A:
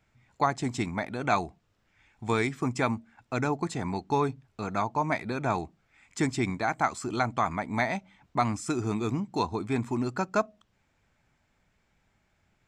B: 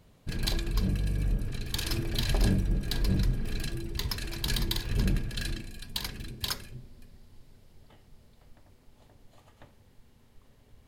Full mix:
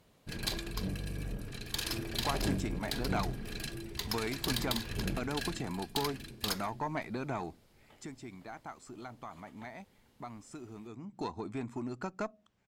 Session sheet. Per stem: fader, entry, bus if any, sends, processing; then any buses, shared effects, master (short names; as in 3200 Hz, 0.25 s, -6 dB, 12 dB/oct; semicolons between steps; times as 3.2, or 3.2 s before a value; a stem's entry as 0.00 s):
7.51 s -1 dB -> 8.11 s -11.5 dB -> 10.96 s -11.5 dB -> 11.18 s -3 dB, 1.85 s, no send, low shelf 390 Hz +7.5 dB; compressor 2.5:1, threshold -29 dBFS, peak gain reduction 8 dB
+0.5 dB, 0.00 s, no send, dry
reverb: off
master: low shelf 150 Hz -11 dB; tube stage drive 21 dB, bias 0.5